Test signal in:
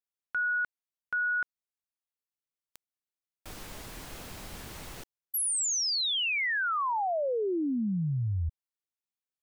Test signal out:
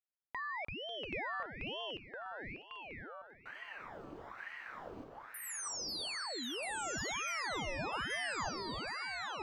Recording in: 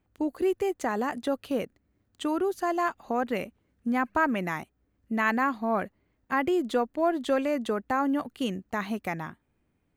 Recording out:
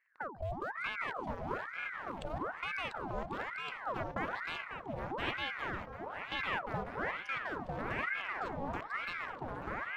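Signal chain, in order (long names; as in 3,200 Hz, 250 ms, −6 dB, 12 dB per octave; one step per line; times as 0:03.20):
adaptive Wiener filter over 25 samples
parametric band 11,000 Hz −13 dB 0.45 octaves
mains-hum notches 50/100/150/200/250/300 Hz
downward compressor 2 to 1, threshold −42 dBFS
echo with a time of its own for lows and highs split 330 Hz, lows 299 ms, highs 545 ms, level −11 dB
delay with pitch and tempo change per echo 272 ms, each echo −3 semitones, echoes 3
ring modulator whose carrier an LFO sweeps 1,100 Hz, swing 75%, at 1.1 Hz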